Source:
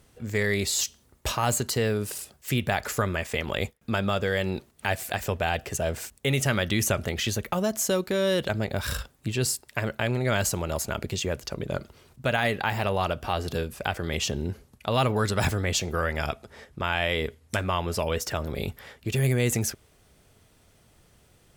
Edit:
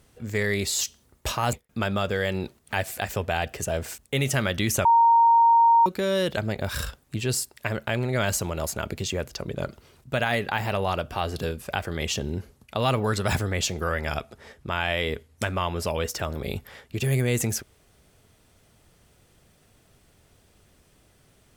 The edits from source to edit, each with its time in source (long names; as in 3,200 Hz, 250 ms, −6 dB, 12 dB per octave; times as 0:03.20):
0:01.53–0:03.65: remove
0:06.97–0:07.98: beep over 927 Hz −13.5 dBFS